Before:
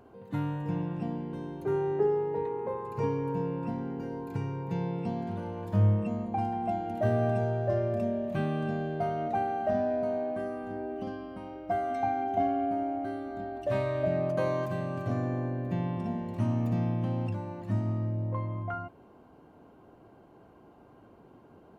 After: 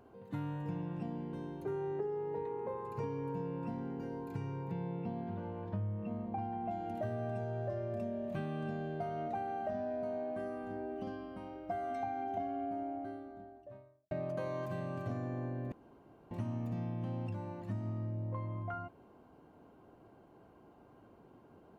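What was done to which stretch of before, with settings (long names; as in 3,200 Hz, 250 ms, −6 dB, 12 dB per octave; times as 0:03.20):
0:04.71–0:06.71: high-frequency loss of the air 230 metres
0:12.41–0:14.11: fade out and dull
0:15.72–0:16.31: fill with room tone
whole clip: downward compressor 6 to 1, threshold −30 dBFS; level −4.5 dB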